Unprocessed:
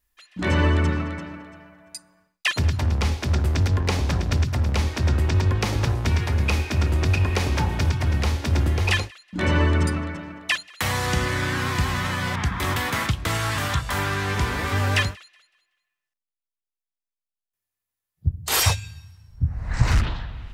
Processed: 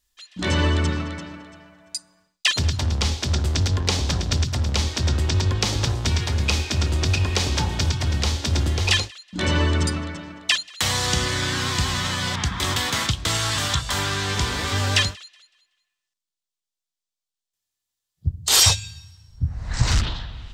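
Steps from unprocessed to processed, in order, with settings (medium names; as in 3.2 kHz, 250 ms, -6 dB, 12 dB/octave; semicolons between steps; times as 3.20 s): high-order bell 5.1 kHz +9.5 dB; trim -1 dB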